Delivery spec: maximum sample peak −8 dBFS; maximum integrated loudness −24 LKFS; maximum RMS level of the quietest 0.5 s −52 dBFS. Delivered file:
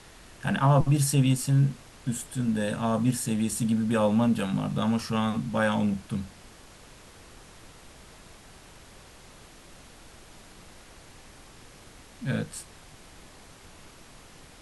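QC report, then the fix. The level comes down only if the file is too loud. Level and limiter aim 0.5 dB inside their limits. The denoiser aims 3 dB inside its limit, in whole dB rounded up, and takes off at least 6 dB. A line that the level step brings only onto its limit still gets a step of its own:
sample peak −9.5 dBFS: in spec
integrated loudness −26.5 LKFS: in spec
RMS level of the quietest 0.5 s −50 dBFS: out of spec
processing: broadband denoise 6 dB, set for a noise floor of −50 dBFS

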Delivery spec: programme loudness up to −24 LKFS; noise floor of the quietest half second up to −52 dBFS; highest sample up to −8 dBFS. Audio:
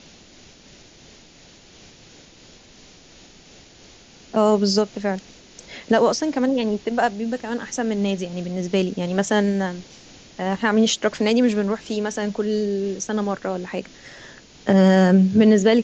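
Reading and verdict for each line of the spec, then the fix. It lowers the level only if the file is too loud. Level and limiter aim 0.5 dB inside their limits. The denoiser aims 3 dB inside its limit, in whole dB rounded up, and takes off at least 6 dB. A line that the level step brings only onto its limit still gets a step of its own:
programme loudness −21.0 LKFS: out of spec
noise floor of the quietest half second −49 dBFS: out of spec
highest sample −5.0 dBFS: out of spec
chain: level −3.5 dB

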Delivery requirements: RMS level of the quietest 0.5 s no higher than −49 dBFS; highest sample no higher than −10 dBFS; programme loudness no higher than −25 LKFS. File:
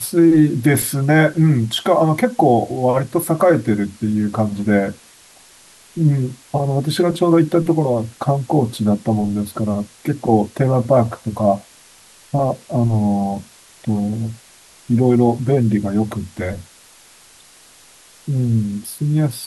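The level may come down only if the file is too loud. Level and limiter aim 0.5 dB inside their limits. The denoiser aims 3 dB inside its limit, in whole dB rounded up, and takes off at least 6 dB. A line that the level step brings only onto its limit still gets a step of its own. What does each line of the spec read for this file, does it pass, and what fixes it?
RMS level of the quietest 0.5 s −47 dBFS: out of spec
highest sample −4.0 dBFS: out of spec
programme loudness −17.5 LKFS: out of spec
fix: level −8 dB

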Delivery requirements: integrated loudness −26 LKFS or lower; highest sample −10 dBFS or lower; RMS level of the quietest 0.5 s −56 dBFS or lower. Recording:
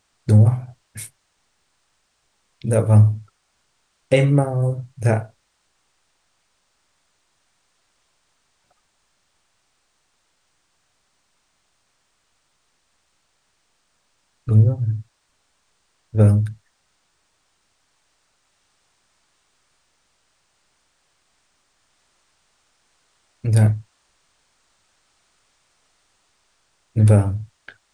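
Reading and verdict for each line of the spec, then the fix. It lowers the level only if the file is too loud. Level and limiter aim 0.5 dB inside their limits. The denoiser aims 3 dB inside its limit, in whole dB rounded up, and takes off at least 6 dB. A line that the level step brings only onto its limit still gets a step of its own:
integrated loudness −18.5 LKFS: out of spec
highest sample −3.0 dBFS: out of spec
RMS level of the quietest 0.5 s −68 dBFS: in spec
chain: level −8 dB

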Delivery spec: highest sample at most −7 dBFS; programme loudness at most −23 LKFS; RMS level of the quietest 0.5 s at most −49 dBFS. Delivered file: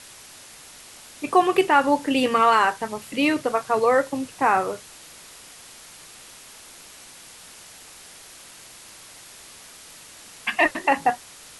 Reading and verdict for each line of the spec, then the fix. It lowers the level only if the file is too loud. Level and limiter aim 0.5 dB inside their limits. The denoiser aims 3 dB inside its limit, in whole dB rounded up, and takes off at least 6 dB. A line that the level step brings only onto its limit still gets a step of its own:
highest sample −5.0 dBFS: out of spec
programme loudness −21.5 LKFS: out of spec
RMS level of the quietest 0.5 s −45 dBFS: out of spec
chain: broadband denoise 6 dB, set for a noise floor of −45 dBFS
level −2 dB
brickwall limiter −7.5 dBFS

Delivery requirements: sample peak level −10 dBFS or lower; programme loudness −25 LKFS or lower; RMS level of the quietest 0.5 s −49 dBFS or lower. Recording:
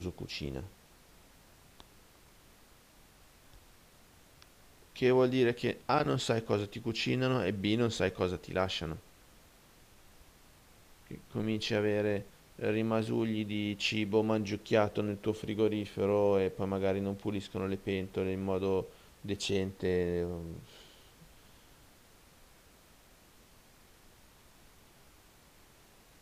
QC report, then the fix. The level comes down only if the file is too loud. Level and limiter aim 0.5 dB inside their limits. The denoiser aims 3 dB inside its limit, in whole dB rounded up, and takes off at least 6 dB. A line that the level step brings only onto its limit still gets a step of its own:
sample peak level −14.5 dBFS: in spec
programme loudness −32.5 LKFS: in spec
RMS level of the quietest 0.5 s −60 dBFS: in spec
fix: no processing needed

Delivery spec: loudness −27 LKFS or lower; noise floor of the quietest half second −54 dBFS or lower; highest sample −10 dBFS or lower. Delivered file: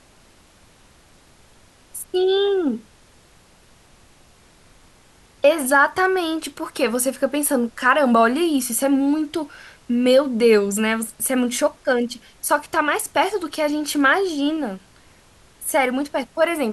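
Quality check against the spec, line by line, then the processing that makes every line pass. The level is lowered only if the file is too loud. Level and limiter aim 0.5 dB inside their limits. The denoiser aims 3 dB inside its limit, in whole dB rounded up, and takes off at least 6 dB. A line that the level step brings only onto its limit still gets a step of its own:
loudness −20.0 LKFS: out of spec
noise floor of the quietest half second −52 dBFS: out of spec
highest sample −3.5 dBFS: out of spec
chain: level −7.5 dB

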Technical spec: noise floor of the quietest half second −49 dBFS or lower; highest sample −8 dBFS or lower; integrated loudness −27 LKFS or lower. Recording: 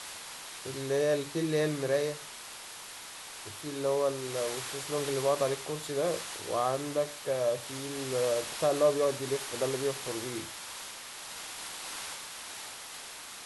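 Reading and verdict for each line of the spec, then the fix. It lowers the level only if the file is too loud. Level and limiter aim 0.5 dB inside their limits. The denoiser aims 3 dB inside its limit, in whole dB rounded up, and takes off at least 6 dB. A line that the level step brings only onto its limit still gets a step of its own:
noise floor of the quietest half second −45 dBFS: out of spec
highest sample −14.5 dBFS: in spec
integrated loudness −32.5 LKFS: in spec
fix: broadband denoise 7 dB, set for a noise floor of −45 dBFS

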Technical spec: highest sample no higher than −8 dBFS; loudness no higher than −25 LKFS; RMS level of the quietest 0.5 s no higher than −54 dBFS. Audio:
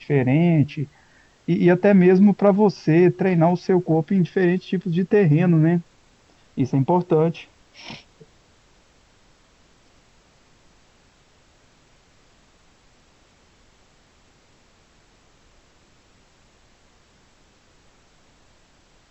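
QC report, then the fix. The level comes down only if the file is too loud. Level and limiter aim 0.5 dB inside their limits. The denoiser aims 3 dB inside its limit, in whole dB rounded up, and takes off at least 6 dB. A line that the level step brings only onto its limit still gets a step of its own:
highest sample −5.5 dBFS: out of spec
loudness −18.5 LKFS: out of spec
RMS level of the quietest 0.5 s −57 dBFS: in spec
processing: level −7 dB

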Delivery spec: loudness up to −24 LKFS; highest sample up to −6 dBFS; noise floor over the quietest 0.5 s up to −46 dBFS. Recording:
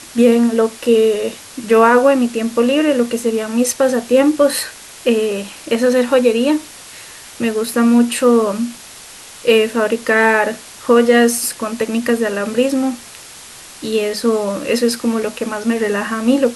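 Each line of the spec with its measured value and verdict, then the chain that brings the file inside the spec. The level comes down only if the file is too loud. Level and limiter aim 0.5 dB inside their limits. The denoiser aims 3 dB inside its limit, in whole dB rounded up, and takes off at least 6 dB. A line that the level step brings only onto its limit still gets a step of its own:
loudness −15.5 LKFS: out of spec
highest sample −1.5 dBFS: out of spec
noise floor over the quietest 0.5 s −37 dBFS: out of spec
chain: broadband denoise 6 dB, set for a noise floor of −37 dBFS
level −9 dB

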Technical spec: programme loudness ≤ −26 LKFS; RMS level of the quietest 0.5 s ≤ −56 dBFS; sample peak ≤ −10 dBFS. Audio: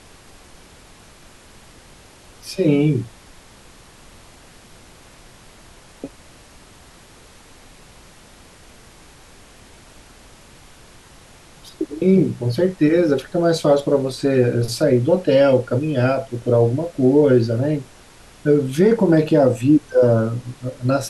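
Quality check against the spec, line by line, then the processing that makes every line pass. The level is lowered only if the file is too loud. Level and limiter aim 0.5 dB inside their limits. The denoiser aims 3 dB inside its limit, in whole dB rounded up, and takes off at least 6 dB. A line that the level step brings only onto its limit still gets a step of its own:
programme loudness −17.5 LKFS: out of spec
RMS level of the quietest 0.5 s −46 dBFS: out of spec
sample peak −5.0 dBFS: out of spec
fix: broadband denoise 6 dB, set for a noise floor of −46 dBFS
level −9 dB

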